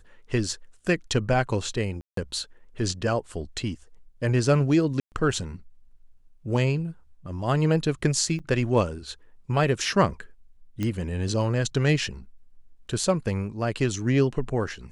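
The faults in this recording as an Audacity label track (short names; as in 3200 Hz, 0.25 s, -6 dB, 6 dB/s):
2.010000	2.170000	gap 0.163 s
5.000000	5.120000	gap 0.119 s
8.390000	8.400000	gap 7.2 ms
10.830000	10.830000	pop -16 dBFS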